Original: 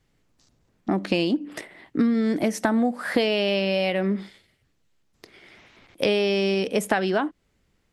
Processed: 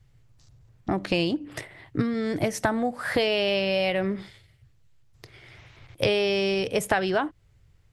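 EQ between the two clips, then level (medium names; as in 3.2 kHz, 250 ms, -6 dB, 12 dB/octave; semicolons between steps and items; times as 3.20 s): resonant low shelf 160 Hz +9.5 dB, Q 3; 0.0 dB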